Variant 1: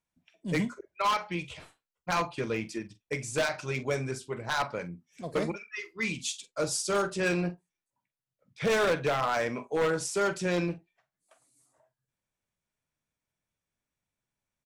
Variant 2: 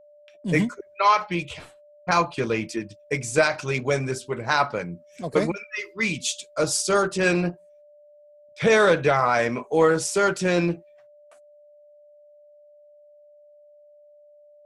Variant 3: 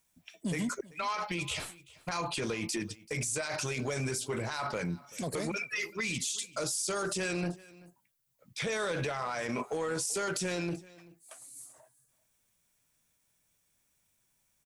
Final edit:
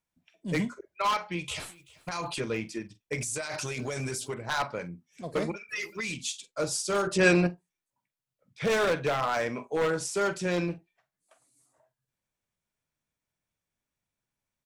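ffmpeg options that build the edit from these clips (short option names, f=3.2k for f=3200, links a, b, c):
-filter_complex "[2:a]asplit=3[a][b][c];[0:a]asplit=5[d][e][f][g][h];[d]atrim=end=1.482[i];[a]atrim=start=1.478:end=2.402[j];[e]atrim=start=2.398:end=3.182[k];[b]atrim=start=3.178:end=4.342[l];[f]atrim=start=4.338:end=5.692[m];[c]atrim=start=5.688:end=6.142[n];[g]atrim=start=6.138:end=7.072[o];[1:a]atrim=start=7.068:end=7.472[p];[h]atrim=start=7.468[q];[i][j]acrossfade=d=0.004:c1=hsin:c2=hsin[r];[r][k]acrossfade=d=0.004:c1=hsin:c2=hsin[s];[s][l]acrossfade=d=0.004:c1=hsin:c2=hsin[t];[t][m]acrossfade=d=0.004:c1=hsin:c2=hsin[u];[u][n]acrossfade=d=0.004:c1=hsin:c2=hsin[v];[v][o]acrossfade=d=0.004:c1=hsin:c2=hsin[w];[w][p]acrossfade=d=0.004:c1=hsin:c2=hsin[x];[x][q]acrossfade=d=0.004:c1=hsin:c2=hsin"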